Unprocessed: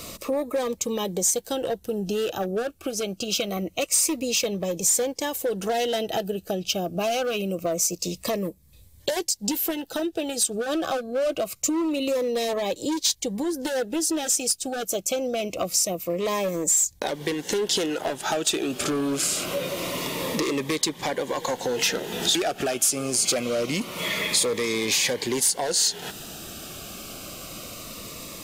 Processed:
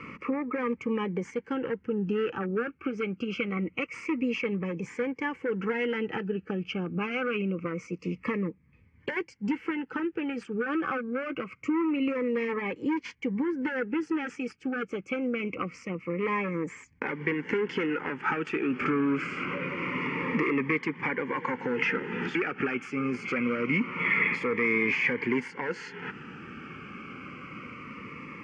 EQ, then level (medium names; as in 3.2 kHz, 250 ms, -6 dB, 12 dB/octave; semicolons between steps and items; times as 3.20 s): cabinet simulation 110–3100 Hz, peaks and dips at 160 Hz +3 dB, 250 Hz +6 dB, 460 Hz +5 dB, 890 Hz +5 dB, 1.3 kHz +5 dB, 2.2 kHz +10 dB; static phaser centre 1.6 kHz, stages 4; -1.0 dB